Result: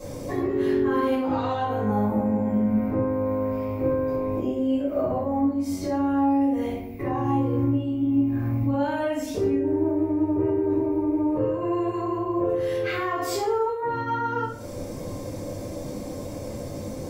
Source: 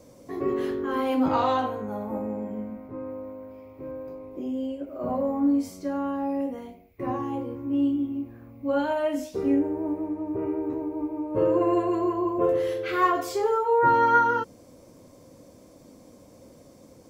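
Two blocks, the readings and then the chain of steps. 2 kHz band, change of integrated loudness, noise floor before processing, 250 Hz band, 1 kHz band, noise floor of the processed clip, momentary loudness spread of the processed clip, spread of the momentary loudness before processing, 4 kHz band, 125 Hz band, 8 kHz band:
−2.5 dB, +1.0 dB, −52 dBFS, +4.0 dB, −2.5 dB, −35 dBFS, 11 LU, 15 LU, +2.0 dB, +12.0 dB, can't be measured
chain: downward compressor 10 to 1, threshold −37 dBFS, peak gain reduction 21.5 dB
brickwall limiter −33.5 dBFS, peak gain reduction 5.5 dB
rectangular room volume 59 cubic metres, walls mixed, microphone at 2.2 metres
level +5.5 dB

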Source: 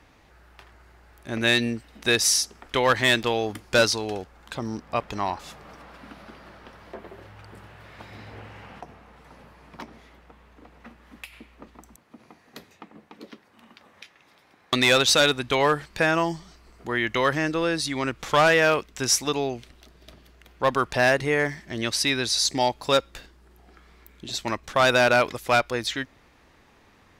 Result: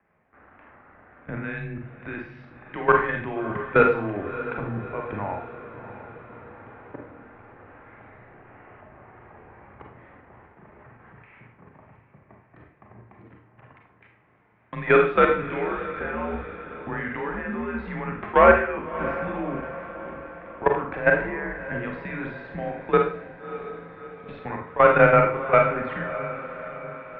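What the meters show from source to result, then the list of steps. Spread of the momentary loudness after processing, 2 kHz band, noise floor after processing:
21 LU, −1.5 dB, −58 dBFS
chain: output level in coarse steps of 18 dB
on a send: feedback delay with all-pass diffusion 632 ms, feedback 56%, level −13 dB
on the sum: four-comb reverb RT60 0.46 s, combs from 33 ms, DRR 1.5 dB
single-sideband voice off tune −99 Hz 160–2,300 Hz
level +4.5 dB

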